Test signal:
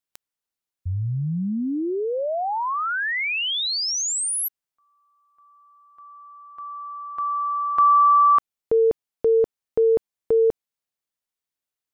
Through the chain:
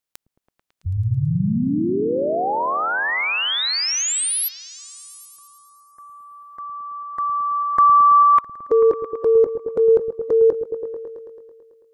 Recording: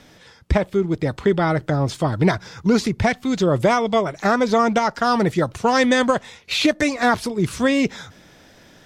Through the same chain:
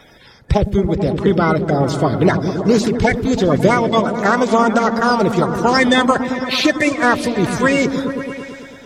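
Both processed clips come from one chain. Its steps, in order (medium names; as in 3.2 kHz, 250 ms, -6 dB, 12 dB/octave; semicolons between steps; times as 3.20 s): coarse spectral quantiser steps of 30 dB; delay with an opening low-pass 110 ms, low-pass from 200 Hz, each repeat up 1 oct, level -3 dB; trim +3.5 dB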